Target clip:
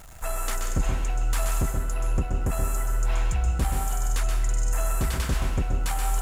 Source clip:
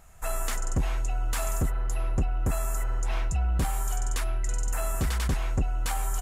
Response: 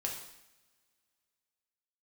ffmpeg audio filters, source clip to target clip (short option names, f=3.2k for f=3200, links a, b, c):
-filter_complex "[0:a]aeval=exprs='val(0)+0.5*0.00708*sgn(val(0))':c=same,asplit=2[a][b];[1:a]atrim=start_sample=2205,adelay=127[c];[b][c]afir=irnorm=-1:irlink=0,volume=-5dB[d];[a][d]amix=inputs=2:normalize=0"